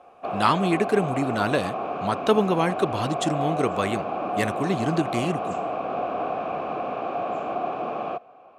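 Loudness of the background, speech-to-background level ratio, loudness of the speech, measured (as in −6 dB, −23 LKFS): −29.5 LKFS, 4.0 dB, −25.5 LKFS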